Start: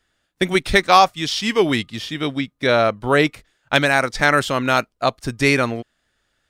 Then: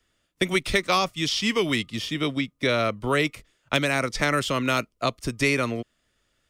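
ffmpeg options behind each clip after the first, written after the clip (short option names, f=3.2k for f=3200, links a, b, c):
-filter_complex "[0:a]equalizer=f=800:t=o:w=0.33:g=-8,equalizer=f=1.6k:t=o:w=0.33:g=-8,equalizer=f=4k:t=o:w=0.33:g=-4,acrossover=split=220|530|1200|6100[a][b][c][d][e];[a]acompressor=threshold=-31dB:ratio=4[f];[b]acompressor=threshold=-28dB:ratio=4[g];[c]acompressor=threshold=-32dB:ratio=4[h];[d]acompressor=threshold=-22dB:ratio=4[i];[e]acompressor=threshold=-38dB:ratio=4[j];[f][g][h][i][j]amix=inputs=5:normalize=0"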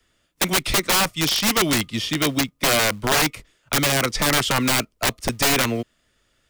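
-filter_complex "[0:a]acrossover=split=280|1700|4900[a][b][c][d];[a]acrusher=bits=5:mode=log:mix=0:aa=0.000001[e];[e][b][c][d]amix=inputs=4:normalize=0,aeval=exprs='(mod(7.5*val(0)+1,2)-1)/7.5':c=same,volume=5dB"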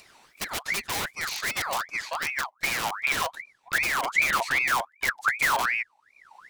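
-af "asubboost=boost=10.5:cutoff=150,acompressor=mode=upward:threshold=-25dB:ratio=2.5,aeval=exprs='val(0)*sin(2*PI*1600*n/s+1600*0.5/2.6*sin(2*PI*2.6*n/s))':c=same,volume=-9dB"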